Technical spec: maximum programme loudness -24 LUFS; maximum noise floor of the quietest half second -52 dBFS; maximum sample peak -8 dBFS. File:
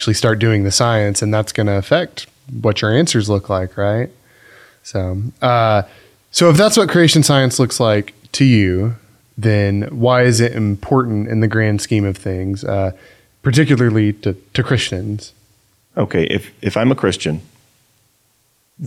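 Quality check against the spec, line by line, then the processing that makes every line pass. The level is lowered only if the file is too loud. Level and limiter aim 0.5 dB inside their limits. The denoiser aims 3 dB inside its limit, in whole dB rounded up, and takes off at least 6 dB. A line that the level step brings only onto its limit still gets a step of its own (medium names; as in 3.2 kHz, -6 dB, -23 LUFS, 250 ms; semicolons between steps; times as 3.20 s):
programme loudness -15.5 LUFS: fail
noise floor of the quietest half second -60 dBFS: pass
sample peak -2.0 dBFS: fail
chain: trim -9 dB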